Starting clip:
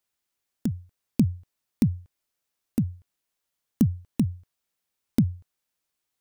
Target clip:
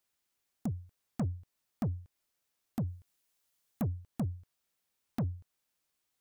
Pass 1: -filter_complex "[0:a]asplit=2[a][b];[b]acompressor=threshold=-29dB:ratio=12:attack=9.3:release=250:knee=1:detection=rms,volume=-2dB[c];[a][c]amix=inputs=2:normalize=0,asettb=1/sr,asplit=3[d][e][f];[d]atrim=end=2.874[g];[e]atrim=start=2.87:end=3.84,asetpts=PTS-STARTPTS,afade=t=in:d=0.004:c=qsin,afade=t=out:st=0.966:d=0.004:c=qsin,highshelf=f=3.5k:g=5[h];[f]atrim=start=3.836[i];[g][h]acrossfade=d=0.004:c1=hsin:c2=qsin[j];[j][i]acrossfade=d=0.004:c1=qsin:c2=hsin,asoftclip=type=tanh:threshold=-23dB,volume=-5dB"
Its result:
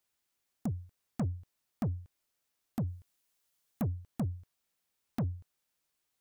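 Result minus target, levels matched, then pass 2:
compressor: peak gain reduction -6 dB
-filter_complex "[0:a]asplit=2[a][b];[b]acompressor=threshold=-35.5dB:ratio=12:attack=9.3:release=250:knee=1:detection=rms,volume=-2dB[c];[a][c]amix=inputs=2:normalize=0,asettb=1/sr,asplit=3[d][e][f];[d]atrim=end=2.874[g];[e]atrim=start=2.87:end=3.84,asetpts=PTS-STARTPTS,afade=t=in:d=0.004:c=qsin,afade=t=out:st=0.966:d=0.004:c=qsin,highshelf=f=3.5k:g=5[h];[f]atrim=start=3.836[i];[g][h]acrossfade=d=0.004:c1=hsin:c2=qsin[j];[j][i]acrossfade=d=0.004:c1=qsin:c2=hsin,asoftclip=type=tanh:threshold=-23dB,volume=-5dB"

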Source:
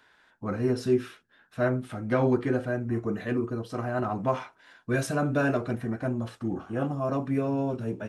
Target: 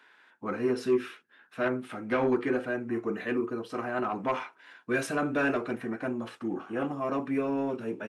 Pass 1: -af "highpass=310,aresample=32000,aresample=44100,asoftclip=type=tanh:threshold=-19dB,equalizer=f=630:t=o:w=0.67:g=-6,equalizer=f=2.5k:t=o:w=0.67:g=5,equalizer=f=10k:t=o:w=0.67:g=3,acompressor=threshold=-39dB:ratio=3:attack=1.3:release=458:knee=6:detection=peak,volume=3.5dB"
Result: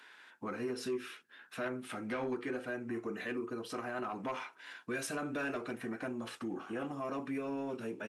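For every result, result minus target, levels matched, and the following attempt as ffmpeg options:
compressor: peak gain reduction +12.5 dB; 8000 Hz band +8.5 dB
-af "highpass=310,aresample=32000,aresample=44100,asoftclip=type=tanh:threshold=-19dB,equalizer=f=630:t=o:w=0.67:g=-6,equalizer=f=2.5k:t=o:w=0.67:g=5,equalizer=f=10k:t=o:w=0.67:g=3,volume=3.5dB"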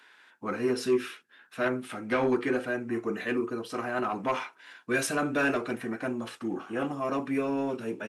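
8000 Hz band +7.5 dB
-af "highpass=310,highshelf=f=3.2k:g=-9.5,aresample=32000,aresample=44100,asoftclip=type=tanh:threshold=-19dB,equalizer=f=630:t=o:w=0.67:g=-6,equalizer=f=2.5k:t=o:w=0.67:g=5,equalizer=f=10k:t=o:w=0.67:g=3,volume=3.5dB"

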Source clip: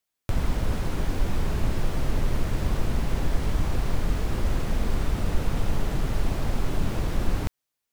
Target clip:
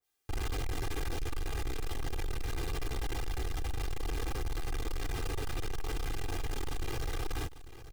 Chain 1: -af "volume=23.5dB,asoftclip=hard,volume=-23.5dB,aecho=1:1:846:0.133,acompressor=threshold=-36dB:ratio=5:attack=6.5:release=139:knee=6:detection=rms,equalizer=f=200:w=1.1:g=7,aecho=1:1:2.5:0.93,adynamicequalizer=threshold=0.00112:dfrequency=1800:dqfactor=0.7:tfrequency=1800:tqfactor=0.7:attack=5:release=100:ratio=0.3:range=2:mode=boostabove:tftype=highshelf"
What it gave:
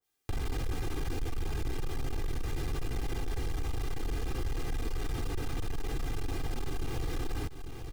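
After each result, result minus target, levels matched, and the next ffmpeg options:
overloaded stage: distortion -4 dB; 250 Hz band +2.5 dB
-af "volume=32.5dB,asoftclip=hard,volume=-32.5dB,aecho=1:1:846:0.133,acompressor=threshold=-36dB:ratio=5:attack=6.5:release=139:knee=6:detection=rms,equalizer=f=200:w=1.1:g=7,aecho=1:1:2.5:0.93,adynamicequalizer=threshold=0.00112:dfrequency=1800:dqfactor=0.7:tfrequency=1800:tqfactor=0.7:attack=5:release=100:ratio=0.3:range=2:mode=boostabove:tftype=highshelf"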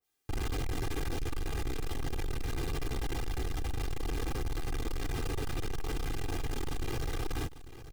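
250 Hz band +3.0 dB
-af "volume=32.5dB,asoftclip=hard,volume=-32.5dB,aecho=1:1:846:0.133,acompressor=threshold=-36dB:ratio=5:attack=6.5:release=139:knee=6:detection=rms,aecho=1:1:2.5:0.93,adynamicequalizer=threshold=0.00112:dfrequency=1800:dqfactor=0.7:tfrequency=1800:tqfactor=0.7:attack=5:release=100:ratio=0.3:range=2:mode=boostabove:tftype=highshelf"

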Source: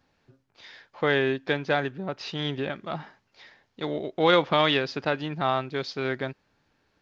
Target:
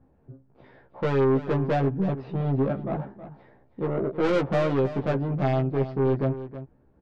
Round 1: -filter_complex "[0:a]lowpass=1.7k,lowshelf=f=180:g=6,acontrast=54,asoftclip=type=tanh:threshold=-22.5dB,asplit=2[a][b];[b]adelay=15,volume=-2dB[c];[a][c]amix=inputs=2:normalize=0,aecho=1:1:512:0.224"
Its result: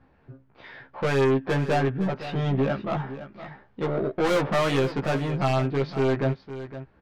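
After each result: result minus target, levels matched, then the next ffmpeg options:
echo 0.192 s late; 2000 Hz band +5.5 dB
-filter_complex "[0:a]lowpass=1.7k,lowshelf=f=180:g=6,acontrast=54,asoftclip=type=tanh:threshold=-22.5dB,asplit=2[a][b];[b]adelay=15,volume=-2dB[c];[a][c]amix=inputs=2:normalize=0,aecho=1:1:320:0.224"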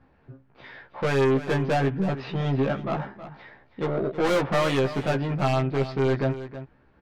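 2000 Hz band +5.5 dB
-filter_complex "[0:a]lowpass=640,lowshelf=f=180:g=6,acontrast=54,asoftclip=type=tanh:threshold=-22.5dB,asplit=2[a][b];[b]adelay=15,volume=-2dB[c];[a][c]amix=inputs=2:normalize=0,aecho=1:1:320:0.224"

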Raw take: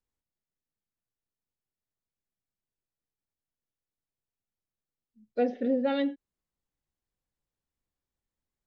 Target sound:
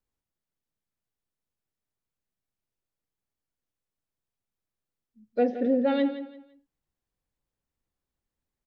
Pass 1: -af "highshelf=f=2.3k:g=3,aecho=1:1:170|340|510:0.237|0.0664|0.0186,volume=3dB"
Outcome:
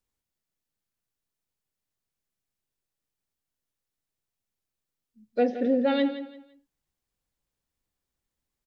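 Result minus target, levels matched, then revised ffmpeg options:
4000 Hz band +5.0 dB
-af "highshelf=f=2.3k:g=-4.5,aecho=1:1:170|340|510:0.237|0.0664|0.0186,volume=3dB"

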